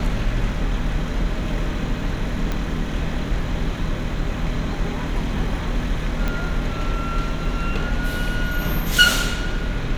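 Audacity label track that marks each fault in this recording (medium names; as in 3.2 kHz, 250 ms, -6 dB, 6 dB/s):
2.520000	2.520000	pop -11 dBFS
6.280000	6.280000	pop -11 dBFS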